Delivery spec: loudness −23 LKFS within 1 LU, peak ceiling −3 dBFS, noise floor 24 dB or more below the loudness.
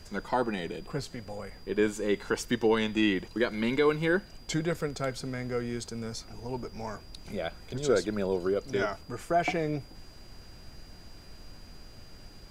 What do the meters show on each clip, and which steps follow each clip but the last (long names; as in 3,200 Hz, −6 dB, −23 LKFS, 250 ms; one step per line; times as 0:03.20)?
interfering tone 4,800 Hz; level of the tone −56 dBFS; background noise floor −50 dBFS; target noise floor −55 dBFS; integrated loudness −31.0 LKFS; sample peak −13.0 dBFS; target loudness −23.0 LKFS
→ notch filter 4,800 Hz, Q 30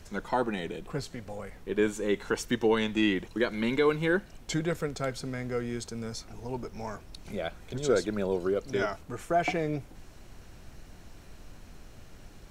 interfering tone none found; background noise floor −51 dBFS; target noise floor −55 dBFS
→ noise reduction from a noise print 6 dB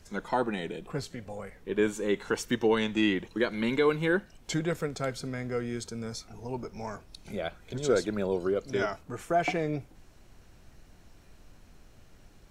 background noise floor −56 dBFS; integrated loudness −31.0 LKFS; sample peak −13.0 dBFS; target loudness −23.0 LKFS
→ level +8 dB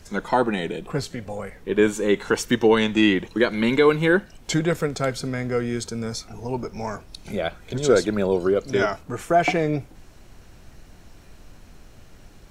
integrated loudness −23.0 LKFS; sample peak −5.0 dBFS; background noise floor −48 dBFS